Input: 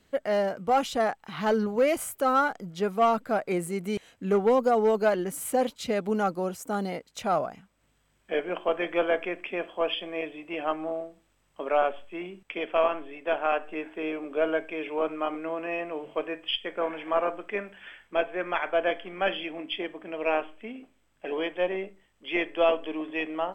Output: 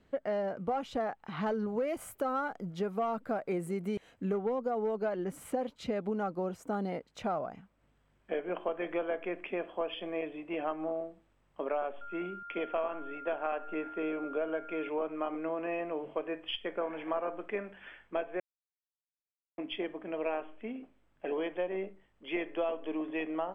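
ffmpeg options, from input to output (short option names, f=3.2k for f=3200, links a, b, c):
-filter_complex "[0:a]asettb=1/sr,asplit=3[a][b][c];[a]atrim=end=1.464[d];[b]atrim=start=1.46:end=4.41,asetpts=PTS-STARTPTS,afade=t=in:d=0.004:c=qsin,afade=t=out:st=2.946:d=0.004:c=qsin,highshelf=f=8.8k:g=10[e];[c]atrim=start=4.406[f];[d][e]acrossfade=d=0.004:c1=hsin:c2=qsin[g];[g][f]acrossfade=d=0.004:c1=qsin:c2=hsin,asettb=1/sr,asplit=3[h][i][j];[h]atrim=end=12.014[k];[i]atrim=start=12.01:end=14.89,asetpts=PTS-STARTPTS,afade=t=in:d=0.004:c=qsin,afade=t=out:st=2.876:d=0.004:c=qsin,aeval=exprs='val(0)+0.01*sin(2*PI*1400*n/s)':c=same[l];[j]atrim=start=14.886[m];[k][l]acrossfade=d=0.004:c1=hsin:c2=qsin[n];[n][m]acrossfade=d=0.004:c1=qsin:c2=hsin,asplit=3[o][p][q];[o]atrim=end=18.4,asetpts=PTS-STARTPTS,afade=t=out:st=18.396:d=0.004:c=hsin[r];[p]atrim=start=18.4:end=19.58,asetpts=PTS-STARTPTS,volume=0[s];[q]atrim=start=19.58,asetpts=PTS-STARTPTS,afade=t=in:d=0.004:c=hsin[t];[r][s][t]concat=n=3:v=0:a=1,lowpass=f=1.4k:p=1,acompressor=threshold=-30dB:ratio=6"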